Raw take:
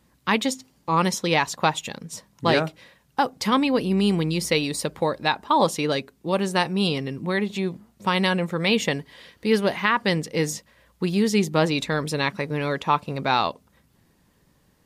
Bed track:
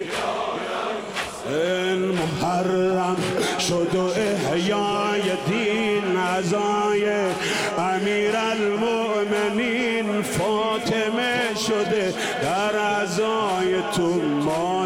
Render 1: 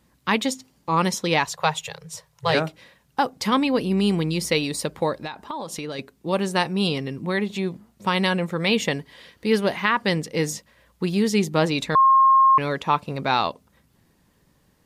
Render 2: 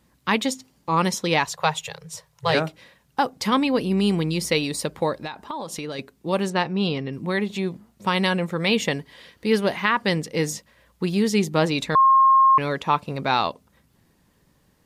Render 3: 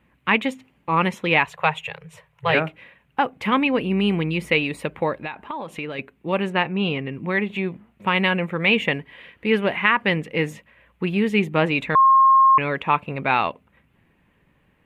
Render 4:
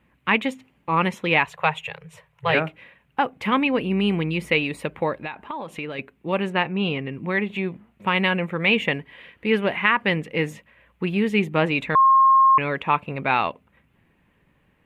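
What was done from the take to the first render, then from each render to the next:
1.45–2.55 s: elliptic band-stop 160–430 Hz; 5.15–5.99 s: compression 16:1, threshold -27 dBFS; 11.95–12.58 s: bleep 1.07 kHz -11.5 dBFS
6.50–7.13 s: distance through air 140 m
resonant high shelf 3.6 kHz -12.5 dB, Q 3
trim -1 dB

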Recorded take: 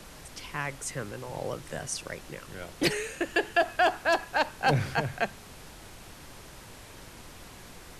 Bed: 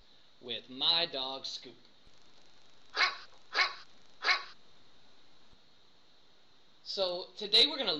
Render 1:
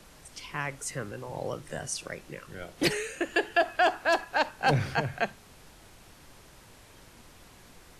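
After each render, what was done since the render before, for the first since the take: noise print and reduce 6 dB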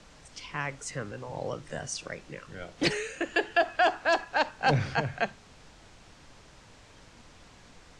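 low-pass 7.6 kHz 24 dB/octave; band-stop 370 Hz, Q 12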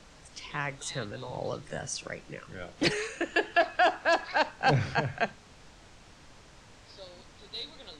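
add bed -15.5 dB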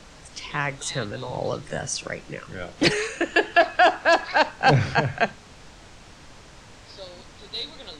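trim +7 dB

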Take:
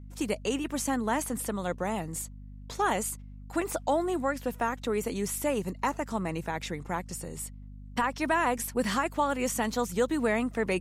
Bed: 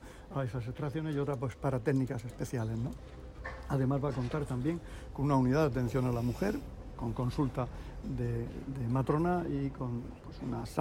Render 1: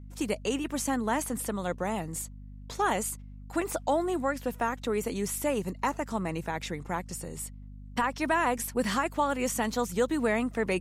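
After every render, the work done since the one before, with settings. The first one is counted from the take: no audible change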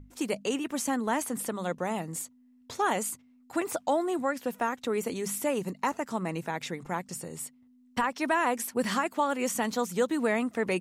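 hum notches 50/100/150/200 Hz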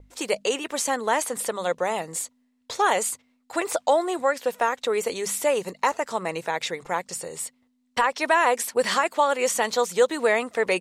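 expander -57 dBFS; graphic EQ 125/250/500/1000/2000/4000/8000 Hz -4/-7/+9/+4/+5/+8/+6 dB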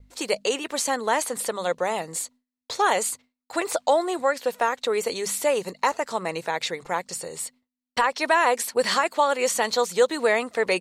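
gate with hold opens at -46 dBFS; peaking EQ 4.3 kHz +6 dB 0.21 oct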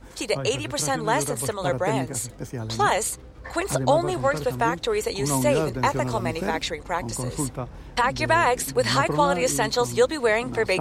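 add bed +3 dB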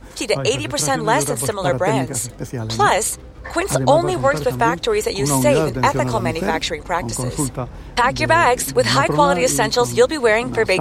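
trim +6 dB; peak limiter -2 dBFS, peak gain reduction 1.5 dB

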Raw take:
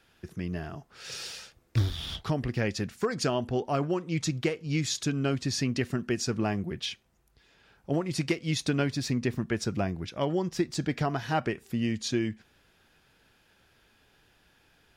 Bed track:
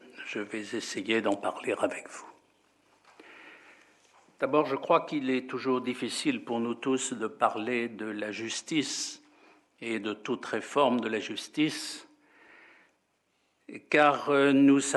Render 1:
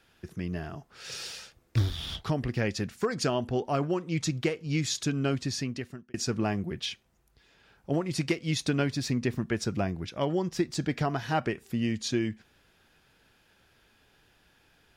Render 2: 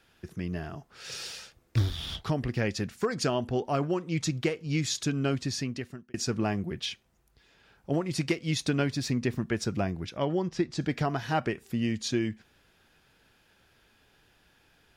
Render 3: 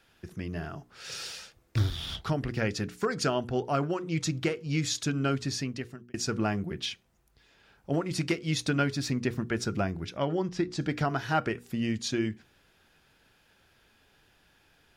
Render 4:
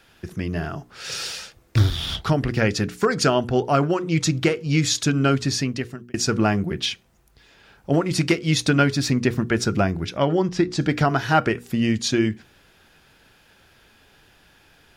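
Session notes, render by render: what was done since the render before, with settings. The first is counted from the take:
5.35–6.14 s: fade out
10.17–10.81 s: distance through air 79 m
dynamic bell 1.4 kHz, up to +7 dB, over -56 dBFS, Q 6.9; hum notches 60/120/180/240/300/360/420/480 Hz
trim +9 dB

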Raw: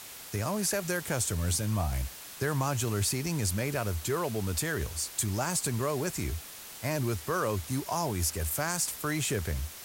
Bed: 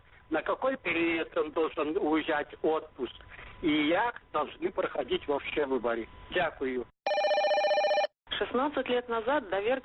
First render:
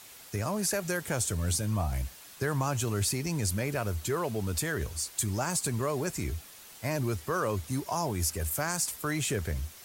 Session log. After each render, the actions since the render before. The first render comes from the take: noise reduction 6 dB, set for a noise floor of -46 dBFS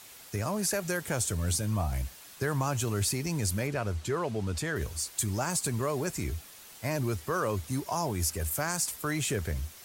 3.67–4.76 s: distance through air 52 m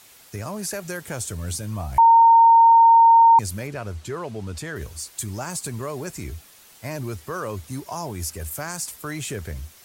1.98–3.39 s: bleep 918 Hz -9 dBFS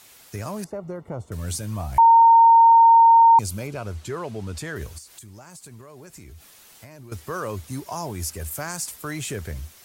0.64–1.32 s: Savitzky-Golay filter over 65 samples; 3.02–3.86 s: peaking EQ 1.8 kHz -13.5 dB 0.2 oct; 4.98–7.12 s: compression 8:1, threshold -40 dBFS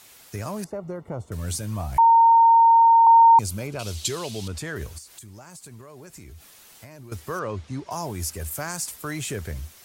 1.97–3.07 s: high-pass 810 Hz; 3.79–4.48 s: resonant high shelf 2.4 kHz +13.5 dB, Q 1.5; 7.39–7.91 s: Gaussian low-pass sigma 1.5 samples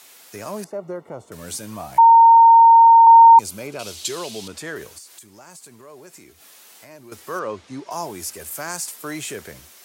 high-pass 280 Hz 12 dB/octave; harmonic-percussive split harmonic +5 dB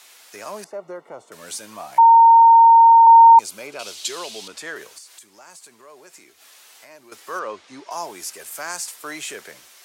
frequency weighting A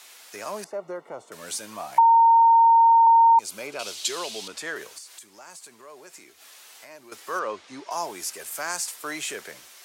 compression, threshold -14 dBFS, peak gain reduction 7.5 dB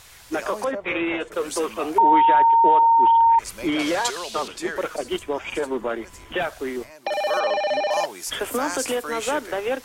add bed +3.5 dB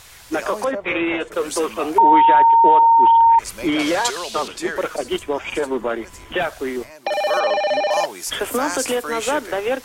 trim +3.5 dB

